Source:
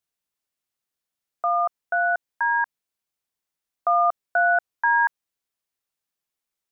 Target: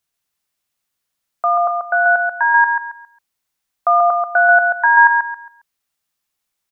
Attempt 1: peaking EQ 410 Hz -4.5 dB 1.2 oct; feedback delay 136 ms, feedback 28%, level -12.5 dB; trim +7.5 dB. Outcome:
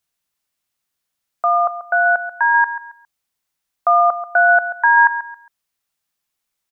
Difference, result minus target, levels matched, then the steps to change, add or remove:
echo-to-direct -8 dB
change: feedback delay 136 ms, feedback 28%, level -4.5 dB

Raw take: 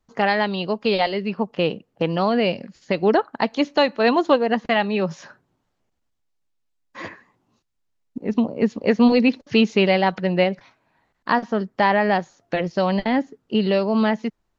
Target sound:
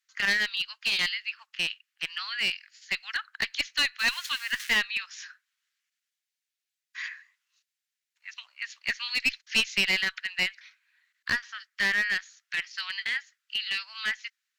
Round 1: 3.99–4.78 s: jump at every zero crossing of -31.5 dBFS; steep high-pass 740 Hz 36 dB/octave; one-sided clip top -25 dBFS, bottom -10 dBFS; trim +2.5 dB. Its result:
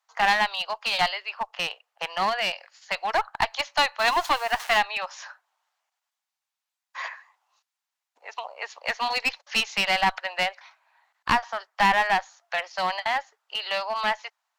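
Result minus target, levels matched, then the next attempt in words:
1 kHz band +17.0 dB
3.99–4.78 s: jump at every zero crossing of -31.5 dBFS; steep high-pass 1.6 kHz 36 dB/octave; one-sided clip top -25 dBFS, bottom -10 dBFS; trim +2.5 dB

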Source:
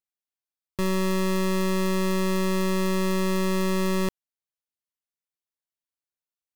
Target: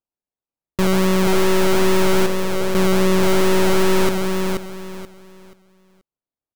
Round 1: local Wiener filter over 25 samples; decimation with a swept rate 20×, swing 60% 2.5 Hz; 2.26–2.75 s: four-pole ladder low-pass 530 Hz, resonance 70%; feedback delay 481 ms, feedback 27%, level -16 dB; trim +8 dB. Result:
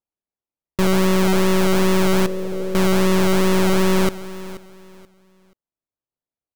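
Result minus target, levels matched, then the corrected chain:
echo-to-direct -11.5 dB
local Wiener filter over 25 samples; decimation with a swept rate 20×, swing 60% 2.5 Hz; 2.26–2.75 s: four-pole ladder low-pass 530 Hz, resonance 70%; feedback delay 481 ms, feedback 27%, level -4.5 dB; trim +8 dB

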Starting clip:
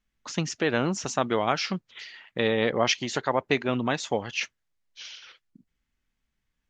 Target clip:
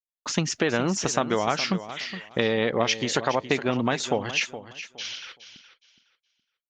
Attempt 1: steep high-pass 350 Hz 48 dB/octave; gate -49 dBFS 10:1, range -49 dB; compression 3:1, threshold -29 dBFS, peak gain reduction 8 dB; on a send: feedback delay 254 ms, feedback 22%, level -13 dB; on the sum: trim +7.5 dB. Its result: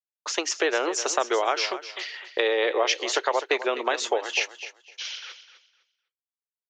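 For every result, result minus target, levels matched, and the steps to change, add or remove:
250 Hz band -9.0 dB; echo 163 ms early
remove: steep high-pass 350 Hz 48 dB/octave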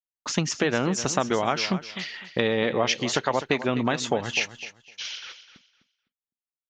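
echo 163 ms early
change: feedback delay 417 ms, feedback 22%, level -13 dB

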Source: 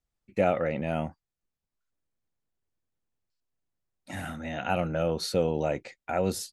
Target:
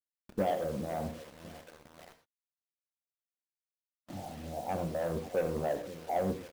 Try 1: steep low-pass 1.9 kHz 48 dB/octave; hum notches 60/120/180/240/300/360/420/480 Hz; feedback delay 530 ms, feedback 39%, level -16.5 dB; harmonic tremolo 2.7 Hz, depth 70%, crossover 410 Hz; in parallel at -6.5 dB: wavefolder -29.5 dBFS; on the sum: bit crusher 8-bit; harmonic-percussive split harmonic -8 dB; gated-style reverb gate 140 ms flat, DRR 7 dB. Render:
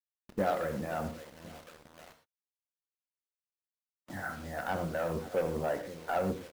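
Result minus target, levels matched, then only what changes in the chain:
2 kHz band +7.0 dB
change: steep low-pass 900 Hz 48 dB/octave

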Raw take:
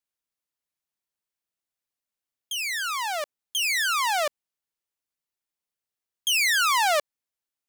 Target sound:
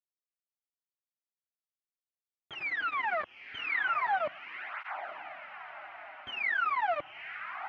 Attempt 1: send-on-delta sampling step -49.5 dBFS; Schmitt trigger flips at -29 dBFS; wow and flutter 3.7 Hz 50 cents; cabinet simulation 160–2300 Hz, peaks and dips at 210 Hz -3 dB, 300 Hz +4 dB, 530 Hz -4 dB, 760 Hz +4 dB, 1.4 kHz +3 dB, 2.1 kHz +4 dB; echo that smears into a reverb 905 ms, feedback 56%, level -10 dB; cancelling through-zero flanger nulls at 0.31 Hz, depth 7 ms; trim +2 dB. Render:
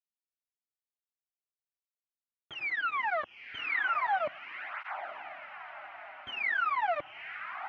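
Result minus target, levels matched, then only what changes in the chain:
send-on-delta sampling: distortion -12 dB
change: send-on-delta sampling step -40.5 dBFS

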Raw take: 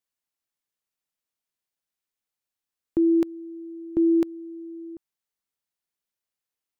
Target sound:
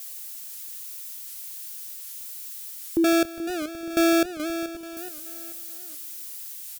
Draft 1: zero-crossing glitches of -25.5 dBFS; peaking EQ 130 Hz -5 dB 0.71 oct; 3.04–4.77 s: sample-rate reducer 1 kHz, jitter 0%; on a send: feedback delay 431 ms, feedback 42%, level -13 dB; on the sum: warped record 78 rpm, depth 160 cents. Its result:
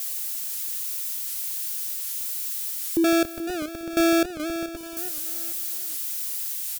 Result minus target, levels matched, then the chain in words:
zero-crossing glitches: distortion +8 dB
zero-crossing glitches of -33.5 dBFS; peaking EQ 130 Hz -5 dB 0.71 oct; 3.04–4.77 s: sample-rate reducer 1 kHz, jitter 0%; on a send: feedback delay 431 ms, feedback 42%, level -13 dB; on the sum: warped record 78 rpm, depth 160 cents

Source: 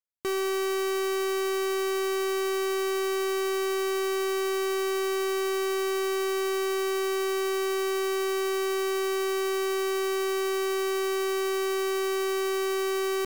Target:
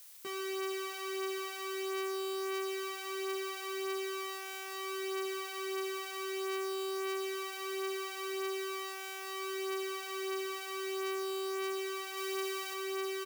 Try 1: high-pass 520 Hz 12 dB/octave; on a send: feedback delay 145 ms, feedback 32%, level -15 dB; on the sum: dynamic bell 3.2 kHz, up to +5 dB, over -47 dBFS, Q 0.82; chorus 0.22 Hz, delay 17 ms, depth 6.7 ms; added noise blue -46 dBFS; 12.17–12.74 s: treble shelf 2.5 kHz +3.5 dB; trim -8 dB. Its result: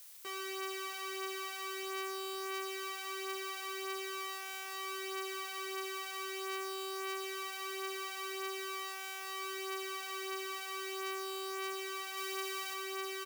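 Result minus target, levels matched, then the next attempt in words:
125 Hz band -6.0 dB
high-pass 160 Hz 12 dB/octave; on a send: feedback delay 145 ms, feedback 32%, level -15 dB; on the sum: dynamic bell 3.2 kHz, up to +5 dB, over -47 dBFS, Q 0.82; chorus 0.22 Hz, delay 17 ms, depth 6.7 ms; added noise blue -46 dBFS; 12.17–12.74 s: treble shelf 2.5 kHz +3.5 dB; trim -8 dB

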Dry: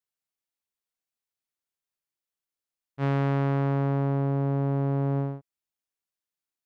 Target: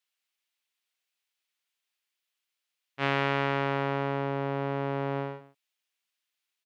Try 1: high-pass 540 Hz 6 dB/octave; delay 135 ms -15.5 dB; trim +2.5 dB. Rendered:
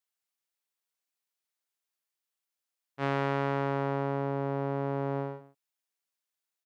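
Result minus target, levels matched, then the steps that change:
2 kHz band -5.0 dB
add after high-pass: peaking EQ 2.8 kHz +10.5 dB 1.7 oct

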